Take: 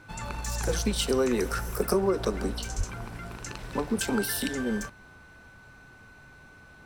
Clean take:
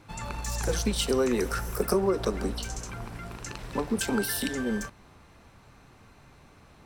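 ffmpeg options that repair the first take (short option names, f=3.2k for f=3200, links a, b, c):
-filter_complex "[0:a]bandreject=f=1.5k:w=30,asplit=3[a][b][c];[a]afade=t=out:st=2.77:d=0.02[d];[b]highpass=f=140:w=0.5412,highpass=f=140:w=1.3066,afade=t=in:st=2.77:d=0.02,afade=t=out:st=2.89:d=0.02[e];[c]afade=t=in:st=2.89:d=0.02[f];[d][e][f]amix=inputs=3:normalize=0"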